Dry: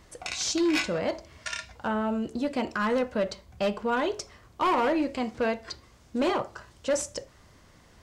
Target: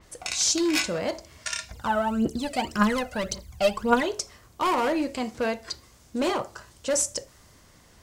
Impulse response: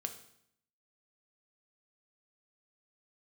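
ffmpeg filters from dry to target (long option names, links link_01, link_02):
-filter_complex "[0:a]highshelf=frequency=6600:gain=8.5,asettb=1/sr,asplit=3[link_01][link_02][link_03];[link_01]atrim=end=1.714[link_04];[link_02]atrim=start=1.71:end=4.03,asetpts=PTS-STARTPTS,afade=type=in:duration=0.004:curve=qsin,afade=type=out:start_time=2.316:duration=0.004:curve=qsin,aphaser=in_gain=1:out_gain=1:delay=1.6:decay=0.73:speed=1.8:type=triangular[link_05];[link_03]atrim=start=4.026[link_06];[link_04][link_05]acrossfade=duration=0.004:curve1=hsin:curve2=qsin[link_07];[link_07][link_06]acrossfade=duration=0.004:curve1=qsin:curve2=hsin,adynamicequalizer=threshold=0.00631:dfrequency=4800:dqfactor=0.7:tfrequency=4800:tqfactor=0.7:attack=5:release=100:ratio=0.375:range=2.5:mode=boostabove:tftype=highshelf"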